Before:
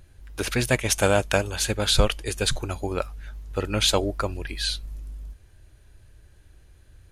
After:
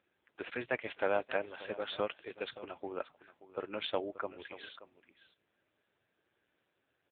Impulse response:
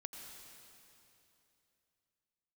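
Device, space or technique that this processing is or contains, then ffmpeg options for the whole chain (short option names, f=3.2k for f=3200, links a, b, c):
satellite phone: -af "highpass=340,lowpass=3.1k,aecho=1:1:579:0.158,volume=-9dB" -ar 8000 -c:a libopencore_amrnb -b:a 6700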